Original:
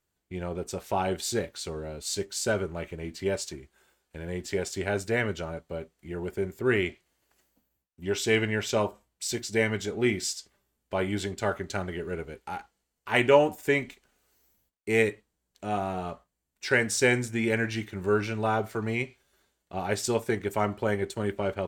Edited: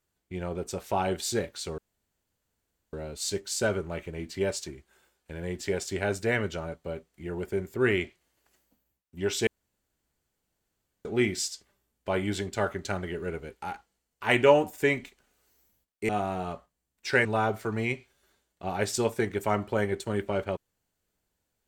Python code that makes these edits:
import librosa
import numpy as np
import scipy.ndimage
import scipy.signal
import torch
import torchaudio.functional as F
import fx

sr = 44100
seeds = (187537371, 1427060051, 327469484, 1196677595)

y = fx.edit(x, sr, fx.insert_room_tone(at_s=1.78, length_s=1.15),
    fx.room_tone_fill(start_s=8.32, length_s=1.58),
    fx.cut(start_s=14.94, length_s=0.73),
    fx.cut(start_s=16.83, length_s=1.52), tone=tone)